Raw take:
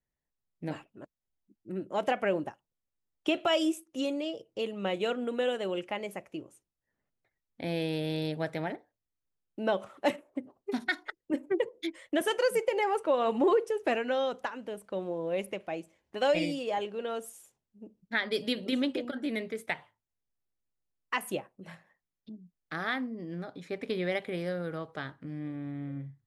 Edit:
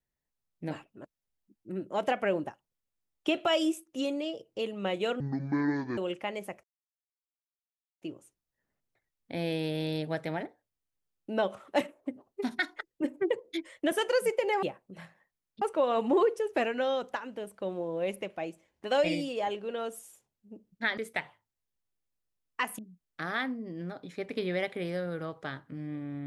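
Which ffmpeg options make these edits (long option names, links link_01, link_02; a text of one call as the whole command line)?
ffmpeg -i in.wav -filter_complex "[0:a]asplit=8[link_01][link_02][link_03][link_04][link_05][link_06][link_07][link_08];[link_01]atrim=end=5.204[link_09];[link_02]atrim=start=5.2:end=5.65,asetpts=PTS-STARTPTS,asetrate=25578,aresample=44100[link_10];[link_03]atrim=start=5.646:end=6.31,asetpts=PTS-STARTPTS,afade=type=out:start_time=0.66:duration=0.004:curve=hsin,apad=pad_dur=1.38[link_11];[link_04]atrim=start=6.31:end=12.922,asetpts=PTS-STARTPTS,afade=type=in:duration=0.004:curve=hsin[link_12];[link_05]atrim=start=21.318:end=22.312[link_13];[link_06]atrim=start=12.918:end=18.282[link_14];[link_07]atrim=start=19.508:end=21.322[link_15];[link_08]atrim=start=22.308[link_16];[link_09][link_10]acrossfade=duration=0.004:curve1=hsin:curve2=hsin[link_17];[link_11][link_12]concat=n=2:v=0:a=1[link_18];[link_17][link_18]acrossfade=duration=0.004:curve1=hsin:curve2=hsin[link_19];[link_19][link_13]acrossfade=duration=0.004:curve1=hsin:curve2=hsin[link_20];[link_20][link_14]acrossfade=duration=0.004:curve1=hsin:curve2=hsin[link_21];[link_21][link_15]acrossfade=duration=0.004:curve1=hsin:curve2=hsin[link_22];[link_22][link_16]acrossfade=duration=0.004:curve1=hsin:curve2=hsin" out.wav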